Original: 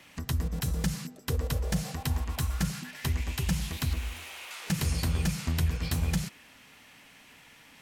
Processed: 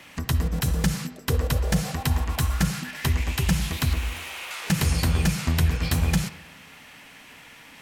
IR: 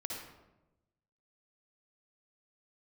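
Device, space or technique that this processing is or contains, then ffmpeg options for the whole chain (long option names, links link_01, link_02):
filtered reverb send: -filter_complex "[0:a]asplit=2[link_01][link_02];[link_02]highpass=frequency=560:poles=1,lowpass=3500[link_03];[1:a]atrim=start_sample=2205[link_04];[link_03][link_04]afir=irnorm=-1:irlink=0,volume=-7.5dB[link_05];[link_01][link_05]amix=inputs=2:normalize=0,volume=6dB"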